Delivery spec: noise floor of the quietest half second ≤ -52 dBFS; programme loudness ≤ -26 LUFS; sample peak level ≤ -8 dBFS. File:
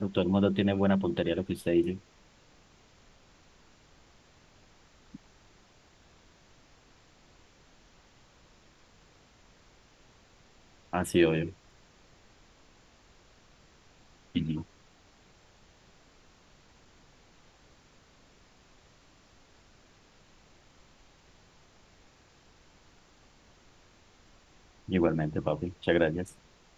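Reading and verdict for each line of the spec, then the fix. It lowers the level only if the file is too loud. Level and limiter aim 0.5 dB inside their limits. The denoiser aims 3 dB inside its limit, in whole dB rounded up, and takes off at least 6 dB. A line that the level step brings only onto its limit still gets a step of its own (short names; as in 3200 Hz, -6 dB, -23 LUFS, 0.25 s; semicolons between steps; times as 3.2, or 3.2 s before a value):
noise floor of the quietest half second -60 dBFS: OK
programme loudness -29.5 LUFS: OK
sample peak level -11.5 dBFS: OK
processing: none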